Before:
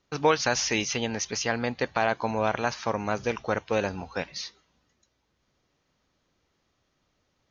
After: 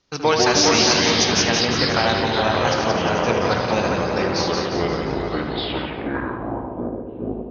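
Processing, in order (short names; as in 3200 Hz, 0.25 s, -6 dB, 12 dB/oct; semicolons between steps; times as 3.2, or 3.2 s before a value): echoes that change speed 84 ms, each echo -4 st, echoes 3; split-band echo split 2000 Hz, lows 0.407 s, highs 0.176 s, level -4.5 dB; low-pass sweep 5400 Hz -> 480 Hz, 5.39–6.97; darkening echo 75 ms, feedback 63%, low-pass 2900 Hz, level -6 dB; gain +2.5 dB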